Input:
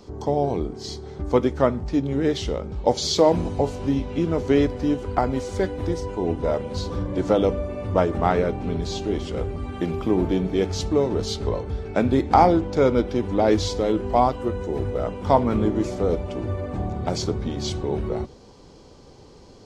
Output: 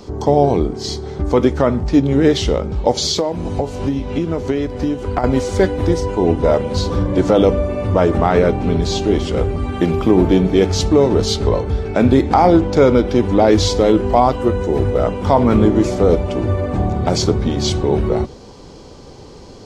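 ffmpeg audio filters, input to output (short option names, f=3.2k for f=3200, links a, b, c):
-filter_complex "[0:a]asettb=1/sr,asplit=3[a][b][c];[a]atrim=end=2.914[d];[b]atrim=start=2.91:end=5.24,asetpts=PTS-STARTPTS,afade=t=in:d=0.004:c=qsin,afade=t=out:st=2.326:d=0.004:c=qsin,acompressor=threshold=-25dB:ratio=10[e];[c]atrim=start=5.236[f];[d][e]acrossfade=d=0.004:c1=hsin:c2=qsin[g];[g][f]acrossfade=d=0.004:c1=qsin:c2=hsin,alimiter=level_in=10.5dB:limit=-1dB:release=50:level=0:latency=1,volume=-1dB"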